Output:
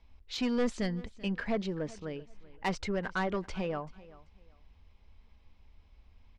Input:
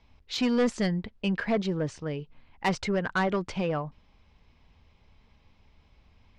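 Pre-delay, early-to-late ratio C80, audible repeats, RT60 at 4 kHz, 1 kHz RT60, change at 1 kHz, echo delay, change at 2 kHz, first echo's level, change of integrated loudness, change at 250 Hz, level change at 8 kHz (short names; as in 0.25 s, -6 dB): none, none, 2, none, none, -5.5 dB, 0.386 s, -5.5 dB, -20.0 dB, -5.5 dB, -5.5 dB, -5.5 dB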